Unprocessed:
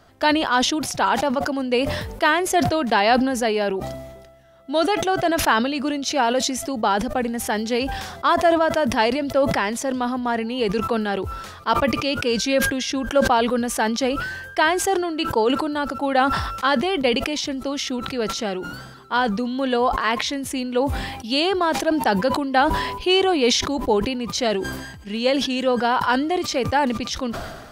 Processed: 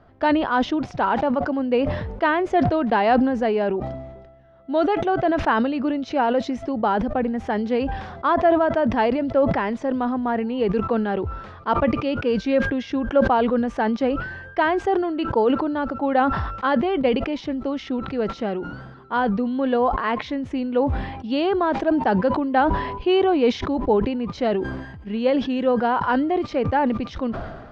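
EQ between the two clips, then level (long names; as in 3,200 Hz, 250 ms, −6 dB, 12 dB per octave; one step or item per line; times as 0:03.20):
head-to-tape spacing loss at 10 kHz 40 dB
+2.5 dB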